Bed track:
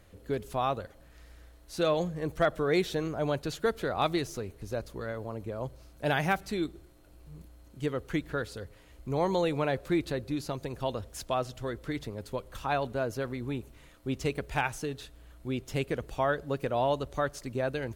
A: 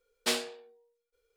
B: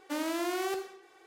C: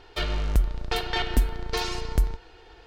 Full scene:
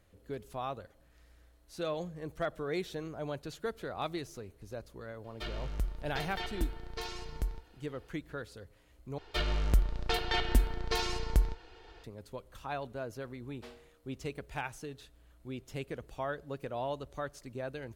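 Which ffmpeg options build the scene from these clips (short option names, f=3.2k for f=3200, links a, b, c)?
-filter_complex "[3:a]asplit=2[a][b];[0:a]volume=-8.5dB[c];[1:a]lowpass=f=1.1k:p=1[d];[c]asplit=2[e][f];[e]atrim=end=9.184[g];[b]atrim=end=2.86,asetpts=PTS-STARTPTS,volume=-4dB[h];[f]atrim=start=12.036[i];[a]atrim=end=2.86,asetpts=PTS-STARTPTS,volume=-12dB,afade=t=in:d=0.004:c=hsin,afade=t=out:st=2.856:d=0.004:c=hsin,adelay=5240[j];[d]atrim=end=1.36,asetpts=PTS-STARTPTS,volume=-16.5dB,afade=t=in:d=0.004:c=hsin,afade=t=out:st=1.356:d=0.004:c=hsin,adelay=13360[k];[g][h]acrossfade=d=0.004:c1=hsin:c2=hsin[l];[l][i]acrossfade=d=0.004:c1=hsin:c2=hsin[m];[m][j][k]amix=inputs=3:normalize=0"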